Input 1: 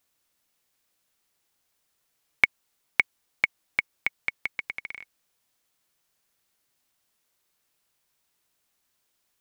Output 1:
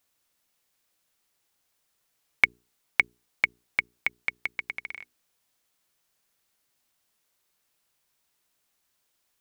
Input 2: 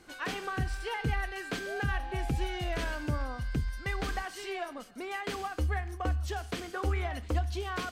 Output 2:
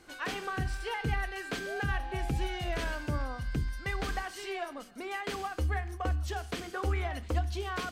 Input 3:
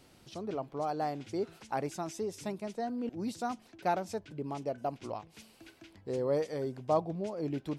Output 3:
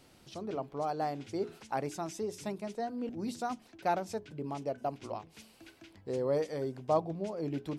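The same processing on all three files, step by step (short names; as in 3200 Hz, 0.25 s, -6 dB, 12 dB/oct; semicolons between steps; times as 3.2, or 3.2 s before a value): notches 60/120/180/240/300/360/420 Hz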